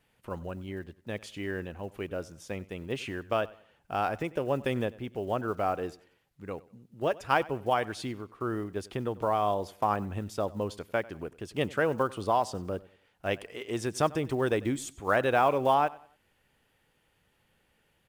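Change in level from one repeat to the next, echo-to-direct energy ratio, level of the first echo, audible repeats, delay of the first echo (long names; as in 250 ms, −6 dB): −9.5 dB, −20.5 dB, −21.0 dB, 2, 95 ms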